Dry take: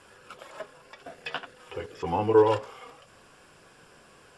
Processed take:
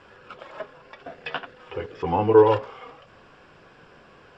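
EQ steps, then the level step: air absorption 190 m; +5.0 dB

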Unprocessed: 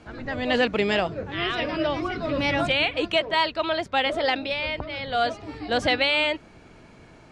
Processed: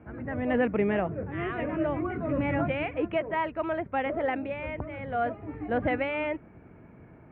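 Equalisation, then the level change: HPF 63 Hz; steep low-pass 2300 Hz 36 dB/oct; low shelf 460 Hz +9.5 dB; -7.5 dB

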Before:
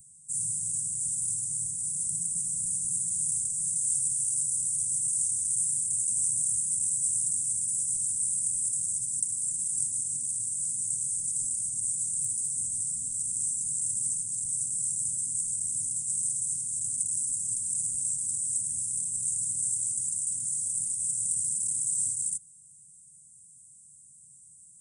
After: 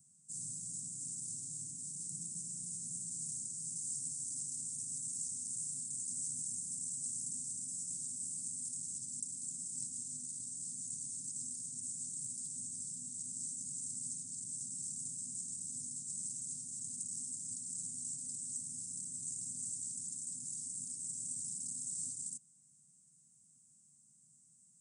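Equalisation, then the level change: HPF 400 Hz 12 dB/oct; air absorption 200 m; bell 2400 Hz -6.5 dB 2 oct; +11.0 dB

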